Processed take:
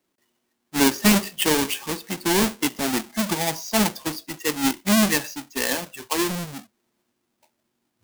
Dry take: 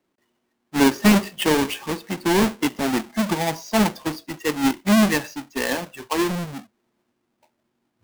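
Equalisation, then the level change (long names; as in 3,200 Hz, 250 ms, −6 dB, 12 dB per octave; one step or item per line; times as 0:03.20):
high-shelf EQ 3,500 Hz +10 dB
−3.0 dB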